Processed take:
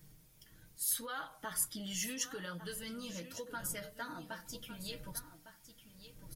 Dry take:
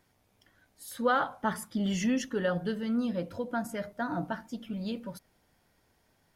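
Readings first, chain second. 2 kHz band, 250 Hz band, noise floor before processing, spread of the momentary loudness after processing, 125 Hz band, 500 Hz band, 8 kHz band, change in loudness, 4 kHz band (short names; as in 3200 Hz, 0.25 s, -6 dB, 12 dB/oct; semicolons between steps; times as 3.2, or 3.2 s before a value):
-8.5 dB, -15.5 dB, -71 dBFS, 21 LU, -11.5 dB, -14.5 dB, +7.5 dB, -7.5 dB, -0.5 dB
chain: wind noise 120 Hz -47 dBFS; notch 730 Hz, Q 12; comb 6.4 ms, depth 53%; compressor 6:1, threshold -32 dBFS, peak gain reduction 11 dB; flange 0.79 Hz, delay 5.8 ms, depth 4.3 ms, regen -55%; pre-emphasis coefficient 0.9; echo 1.156 s -12.5 dB; gain +13 dB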